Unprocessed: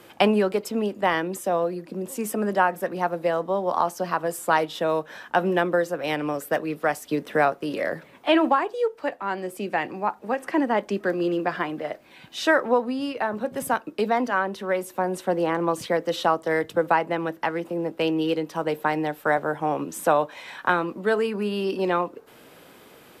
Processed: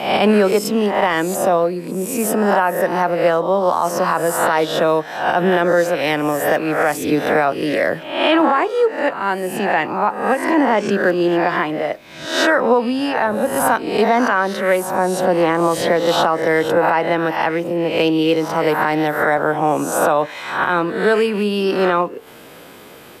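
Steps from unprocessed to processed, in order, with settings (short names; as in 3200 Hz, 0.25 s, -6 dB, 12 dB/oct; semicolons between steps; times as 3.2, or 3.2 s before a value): spectral swells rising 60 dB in 0.62 s; limiter -13 dBFS, peak gain reduction 9.5 dB; gain +7.5 dB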